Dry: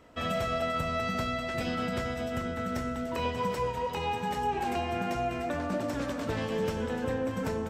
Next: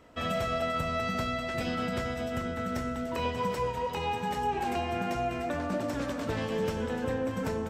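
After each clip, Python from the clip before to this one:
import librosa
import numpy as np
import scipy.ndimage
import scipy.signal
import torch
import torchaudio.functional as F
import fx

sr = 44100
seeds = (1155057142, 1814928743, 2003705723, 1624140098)

y = x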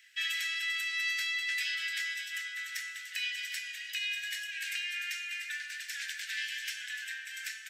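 y = scipy.signal.sosfilt(scipy.signal.butter(16, 1600.0, 'highpass', fs=sr, output='sos'), x)
y = y * librosa.db_to_amplitude(6.5)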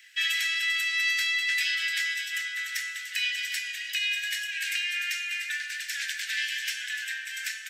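y = scipy.signal.sosfilt(scipy.signal.butter(4, 1200.0, 'highpass', fs=sr, output='sos'), x)
y = y * librosa.db_to_amplitude(6.5)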